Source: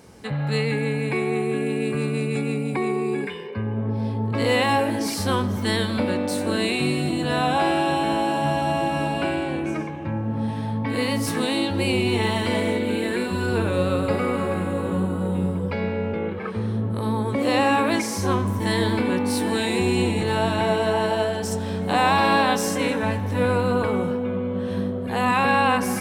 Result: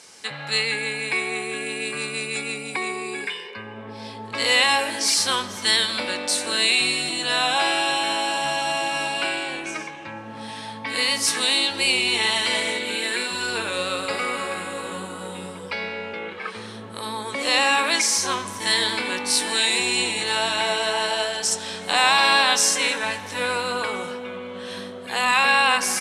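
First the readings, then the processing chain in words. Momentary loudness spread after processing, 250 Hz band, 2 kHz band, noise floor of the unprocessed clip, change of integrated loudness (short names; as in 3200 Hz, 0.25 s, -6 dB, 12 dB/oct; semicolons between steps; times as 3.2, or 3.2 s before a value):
16 LU, -11.5 dB, +5.5 dB, -28 dBFS, +2.0 dB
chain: weighting filter ITU-R 468; downsampling 32000 Hz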